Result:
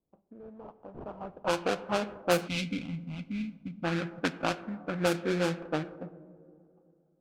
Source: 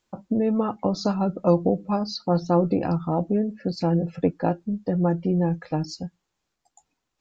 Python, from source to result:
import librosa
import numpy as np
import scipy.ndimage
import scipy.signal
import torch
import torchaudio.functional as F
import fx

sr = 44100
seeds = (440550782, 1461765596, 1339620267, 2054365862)

y = fx.filter_sweep_bandpass(x, sr, from_hz=3600.0, to_hz=500.0, start_s=0.9, end_s=2.0, q=1.4)
y = fx.sample_hold(y, sr, seeds[0], rate_hz=2000.0, jitter_pct=20)
y = fx.peak_eq(y, sr, hz=450.0, db=-14.0, octaves=0.47, at=(2.83, 5.04))
y = fx.rev_plate(y, sr, seeds[1], rt60_s=3.2, hf_ratio=0.6, predelay_ms=0, drr_db=12.5)
y = fx.spec_box(y, sr, start_s=2.48, length_s=1.36, low_hz=280.0, high_hz=2000.0, gain_db=-22)
y = fx.env_lowpass(y, sr, base_hz=440.0, full_db=-21.0)